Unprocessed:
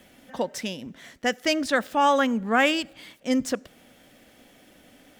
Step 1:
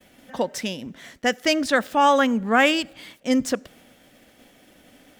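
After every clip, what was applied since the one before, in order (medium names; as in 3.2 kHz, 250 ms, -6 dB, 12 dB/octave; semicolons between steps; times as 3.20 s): expander -51 dBFS; trim +3 dB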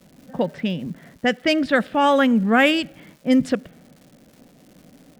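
fifteen-band graphic EQ 160 Hz +11 dB, 1 kHz -5 dB, 6.3 kHz -10 dB; level-controlled noise filter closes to 880 Hz, open at -14.5 dBFS; crackle 370 per s -44 dBFS; trim +2 dB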